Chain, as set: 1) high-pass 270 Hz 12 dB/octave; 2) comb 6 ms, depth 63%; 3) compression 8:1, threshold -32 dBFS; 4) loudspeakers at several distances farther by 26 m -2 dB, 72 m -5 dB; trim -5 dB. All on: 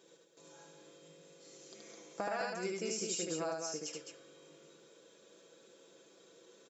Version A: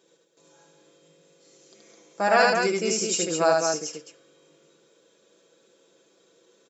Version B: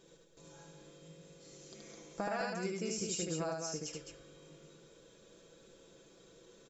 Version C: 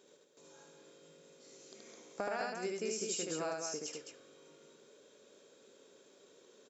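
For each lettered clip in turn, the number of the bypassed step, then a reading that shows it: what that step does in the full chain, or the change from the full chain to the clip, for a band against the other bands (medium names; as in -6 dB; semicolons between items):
3, mean gain reduction 12.0 dB; 1, 125 Hz band +7.5 dB; 2, 125 Hz band -2.0 dB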